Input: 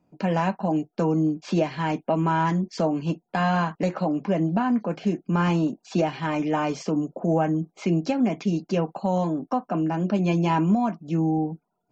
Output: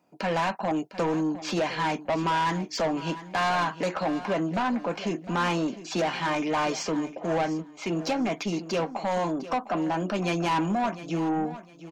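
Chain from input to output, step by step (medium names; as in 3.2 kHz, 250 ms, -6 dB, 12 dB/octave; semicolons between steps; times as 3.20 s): high-pass 750 Hz 6 dB/octave; saturation -28.5 dBFS, distortion -10 dB; feedback delay 705 ms, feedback 26%, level -14.5 dB; 7.15–7.99 s: upward expansion 1.5:1, over -42 dBFS; trim +7 dB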